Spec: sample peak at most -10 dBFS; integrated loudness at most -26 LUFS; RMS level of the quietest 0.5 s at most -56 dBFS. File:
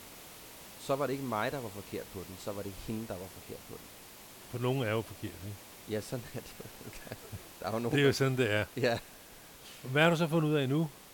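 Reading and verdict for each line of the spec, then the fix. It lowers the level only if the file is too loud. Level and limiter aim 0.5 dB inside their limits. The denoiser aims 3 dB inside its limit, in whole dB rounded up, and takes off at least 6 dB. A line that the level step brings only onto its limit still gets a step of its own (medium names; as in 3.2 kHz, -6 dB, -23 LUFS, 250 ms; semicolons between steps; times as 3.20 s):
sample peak -12.0 dBFS: pass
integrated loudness -33.0 LUFS: pass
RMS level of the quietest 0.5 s -53 dBFS: fail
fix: noise reduction 6 dB, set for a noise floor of -53 dBFS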